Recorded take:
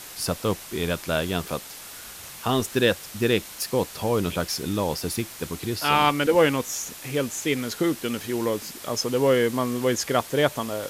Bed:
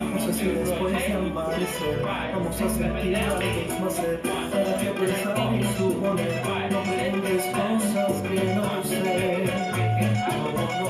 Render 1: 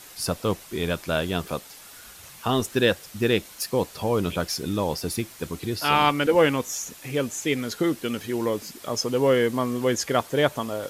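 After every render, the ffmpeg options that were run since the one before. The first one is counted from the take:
ffmpeg -i in.wav -af "afftdn=noise_reduction=6:noise_floor=-41" out.wav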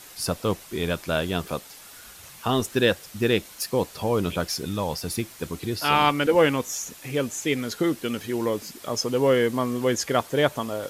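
ffmpeg -i in.wav -filter_complex "[0:a]asettb=1/sr,asplit=3[link_01][link_02][link_03];[link_01]atrim=end=4.654[link_04];[link_02]atrim=start=4.65:end=5.1,asetpts=PTS-STARTPTS,afade=type=in:duration=0.004:curve=qsin,afade=type=out:start_time=0.446:duration=0.004:curve=qsin,equalizer=frequency=340:width=1.5:gain=-6.5[link_05];[link_03]atrim=start=5.096[link_06];[link_04][link_05]acrossfade=duration=0.004:curve1=hsin:curve2=qsin[link_07];[link_07][link_06]acrossfade=duration=0.004:curve1=qsin:curve2=hsin" out.wav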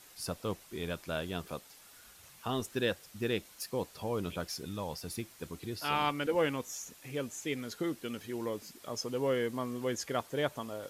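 ffmpeg -i in.wav -af "volume=-11dB" out.wav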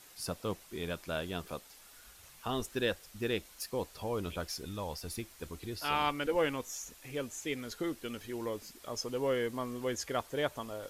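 ffmpeg -i in.wav -af "asubboost=boost=6.5:cutoff=54" out.wav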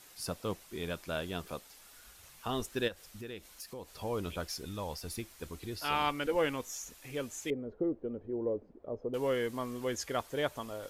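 ffmpeg -i in.wav -filter_complex "[0:a]asplit=3[link_01][link_02][link_03];[link_01]afade=type=out:start_time=2.87:duration=0.02[link_04];[link_02]acompressor=threshold=-43dB:ratio=3:attack=3.2:release=140:knee=1:detection=peak,afade=type=in:start_time=2.87:duration=0.02,afade=type=out:start_time=3.92:duration=0.02[link_05];[link_03]afade=type=in:start_time=3.92:duration=0.02[link_06];[link_04][link_05][link_06]amix=inputs=3:normalize=0,asettb=1/sr,asplit=3[link_07][link_08][link_09];[link_07]atrim=end=7.504[link_10];[link_08]atrim=start=7.5:end=9.14,asetpts=PTS-STARTPTS,afade=type=in:duration=0.004:curve=qsin,afade=type=out:start_time=1.636:duration=0.004:curve=qsin,lowpass=frequency=510:width_type=q:width=1.8[link_11];[link_09]atrim=start=9.136[link_12];[link_10][link_11]acrossfade=duration=0.004:curve1=hsin:curve2=qsin[link_13];[link_13][link_12]acrossfade=duration=0.004:curve1=qsin:curve2=hsin" out.wav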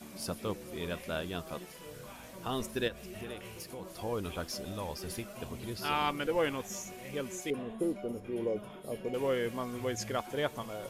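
ffmpeg -i in.wav -i bed.wav -filter_complex "[1:a]volume=-22dB[link_01];[0:a][link_01]amix=inputs=2:normalize=0" out.wav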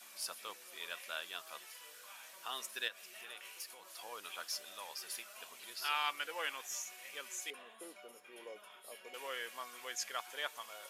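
ffmpeg -i in.wav -af "highpass=1300,bandreject=frequency=2100:width=24" out.wav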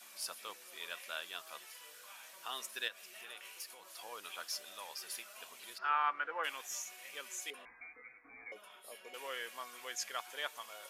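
ffmpeg -i in.wav -filter_complex "[0:a]asplit=3[link_01][link_02][link_03];[link_01]afade=type=out:start_time=5.77:duration=0.02[link_04];[link_02]lowpass=frequency=1400:width_type=q:width=2.1,afade=type=in:start_time=5.77:duration=0.02,afade=type=out:start_time=6.43:duration=0.02[link_05];[link_03]afade=type=in:start_time=6.43:duration=0.02[link_06];[link_04][link_05][link_06]amix=inputs=3:normalize=0,asettb=1/sr,asplit=3[link_07][link_08][link_09];[link_07]atrim=end=7.654[link_10];[link_08]atrim=start=7.65:end=8.52,asetpts=PTS-STARTPTS,afade=type=in:duration=0.004:curve=qsin,afade=type=out:start_time=0.866:duration=0.004:curve=qsin,lowpass=frequency=2300:width_type=q:width=0.5098,lowpass=frequency=2300:width_type=q:width=0.6013,lowpass=frequency=2300:width_type=q:width=0.9,lowpass=frequency=2300:width_type=q:width=2.563,afreqshift=-2700[link_11];[link_09]atrim=start=8.516[link_12];[link_10][link_11]acrossfade=duration=0.004:curve1=hsin:curve2=qsin[link_13];[link_13][link_12]acrossfade=duration=0.004:curve1=qsin:curve2=hsin" out.wav

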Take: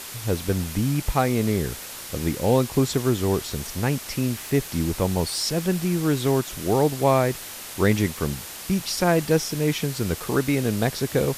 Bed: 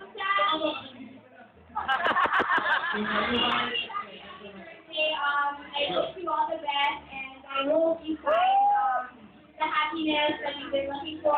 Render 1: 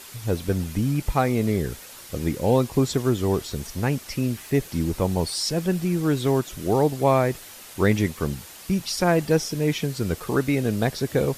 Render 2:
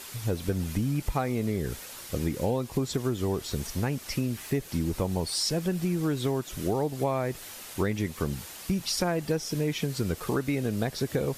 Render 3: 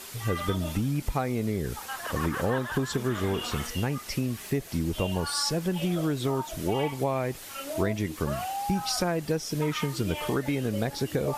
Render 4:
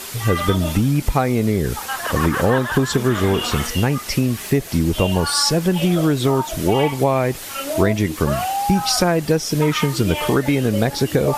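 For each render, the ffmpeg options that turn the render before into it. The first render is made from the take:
ffmpeg -i in.wav -af "afftdn=noise_reduction=7:noise_floor=-37" out.wav
ffmpeg -i in.wav -af "acompressor=threshold=-24dB:ratio=6" out.wav
ffmpeg -i in.wav -i bed.wav -filter_complex "[1:a]volume=-11dB[link_01];[0:a][link_01]amix=inputs=2:normalize=0" out.wav
ffmpeg -i in.wav -af "volume=10.5dB" out.wav

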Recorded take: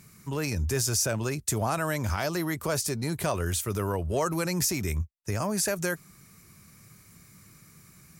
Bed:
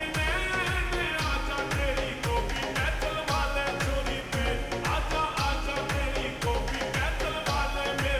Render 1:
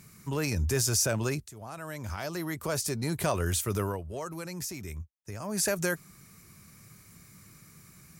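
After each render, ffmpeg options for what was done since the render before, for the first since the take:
ffmpeg -i in.wav -filter_complex "[0:a]asplit=4[link_01][link_02][link_03][link_04];[link_01]atrim=end=1.48,asetpts=PTS-STARTPTS,afade=type=out:start_time=1.476:duration=0.004:curve=hsin:silence=0.0841395[link_05];[link_02]atrim=start=1.48:end=4.03,asetpts=PTS-STARTPTS,afade=type=in:duration=1.75:silence=0.0841395,afade=type=out:start_time=2.32:duration=0.23:silence=0.316228[link_06];[link_03]atrim=start=4.03:end=5.42,asetpts=PTS-STARTPTS,volume=-10dB[link_07];[link_04]atrim=start=5.42,asetpts=PTS-STARTPTS,afade=type=in:duration=0.23:silence=0.316228[link_08];[link_05][link_06][link_07][link_08]concat=n=4:v=0:a=1" out.wav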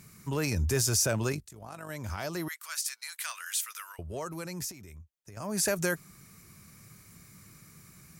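ffmpeg -i in.wav -filter_complex "[0:a]asettb=1/sr,asplit=3[link_01][link_02][link_03];[link_01]atrim=end=1.324[link_04];[link_02]atrim=start=1.32:end=1.9,asetpts=PTS-STARTPTS,afade=type=in:duration=0.004:curve=qsin,afade=type=out:start_time=0.576:duration=0.004:curve=qsin,tremolo=f=49:d=0.621[link_05];[link_03]atrim=start=1.896[link_06];[link_04][link_05]acrossfade=duration=0.004:curve1=hsin:curve2=qsin[link_07];[link_07][link_06]acrossfade=duration=0.004:curve1=qsin:curve2=hsin,asettb=1/sr,asplit=3[link_08][link_09][link_10];[link_08]atrim=end=2.484[link_11];[link_09]atrim=start=2.48:end=3.99,asetpts=PTS-STARTPTS,afade=type=in:duration=0.004:curve=qsin,afade=type=out:start_time=1.506:duration=0.004:curve=qsin,highpass=frequency=1400:width=0.5412,highpass=frequency=1400:width=1.3066[link_12];[link_10]atrim=start=3.986[link_13];[link_11][link_12]acrossfade=duration=0.004:curve1=hsin:curve2=qsin[link_14];[link_14][link_13]acrossfade=duration=0.004:curve1=qsin:curve2=hsin,asettb=1/sr,asplit=3[link_15][link_16][link_17];[link_15]atrim=end=4.714[link_18];[link_16]atrim=start=4.71:end=5.37,asetpts=PTS-STARTPTS,afade=type=in:duration=0.004:curve=qsin,afade=type=out:start_time=0.656:duration=0.004:curve=qsin,acompressor=threshold=-45dB:ratio=6:attack=3.2:release=140:knee=1:detection=peak[link_19];[link_17]atrim=start=5.366[link_20];[link_18][link_19]acrossfade=duration=0.004:curve1=hsin:curve2=qsin[link_21];[link_21][link_20]acrossfade=duration=0.004:curve1=qsin:curve2=hsin" out.wav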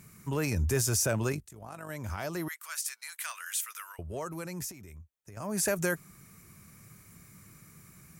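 ffmpeg -i in.wav -af "equalizer=frequency=4500:width_type=o:width=0.93:gain=-5.5" out.wav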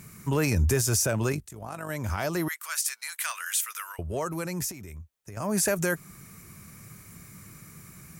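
ffmpeg -i in.wav -af "acontrast=64,alimiter=limit=-15dB:level=0:latency=1:release=266" out.wav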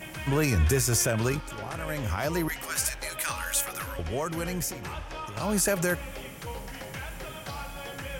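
ffmpeg -i in.wav -i bed.wav -filter_complex "[1:a]volume=-10dB[link_01];[0:a][link_01]amix=inputs=2:normalize=0" out.wav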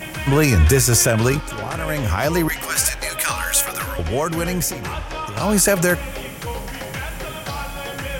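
ffmpeg -i in.wav -af "volume=9.5dB" out.wav

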